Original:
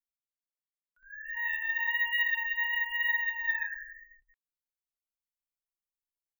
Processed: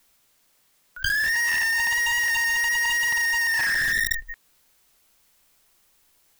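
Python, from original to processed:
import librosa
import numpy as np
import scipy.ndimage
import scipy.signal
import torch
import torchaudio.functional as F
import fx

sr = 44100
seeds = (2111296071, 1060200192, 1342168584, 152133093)

p1 = fx.fuzz(x, sr, gain_db=59.0, gate_db=-54.0)
p2 = x + (p1 * 10.0 ** (-4.0 / 20.0))
p3 = fx.env_flatten(p2, sr, amount_pct=100)
y = p3 * 10.0 ** (-8.0 / 20.0)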